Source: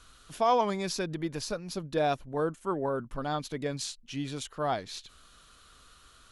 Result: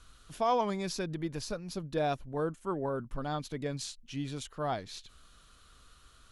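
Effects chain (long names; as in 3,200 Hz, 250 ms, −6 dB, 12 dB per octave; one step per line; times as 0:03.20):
low-shelf EQ 170 Hz +6.5 dB
level −4 dB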